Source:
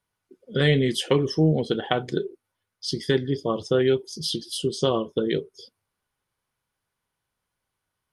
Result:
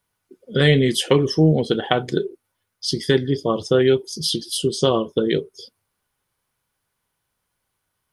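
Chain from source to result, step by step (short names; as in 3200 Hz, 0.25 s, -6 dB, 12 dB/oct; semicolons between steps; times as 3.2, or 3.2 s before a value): high shelf 10000 Hz +7 dB; gain +4.5 dB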